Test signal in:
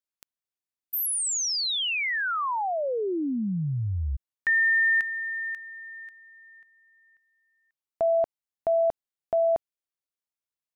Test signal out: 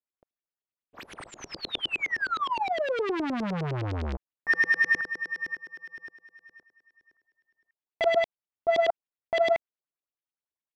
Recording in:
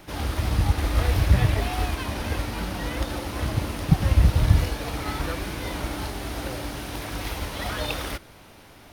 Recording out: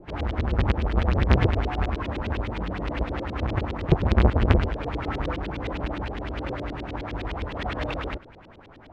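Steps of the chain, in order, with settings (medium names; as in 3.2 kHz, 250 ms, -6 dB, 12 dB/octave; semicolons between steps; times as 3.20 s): square wave that keeps the level; LFO low-pass saw up 9.7 Hz 340–3800 Hz; loudspeaker Doppler distortion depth 0.44 ms; trim -6 dB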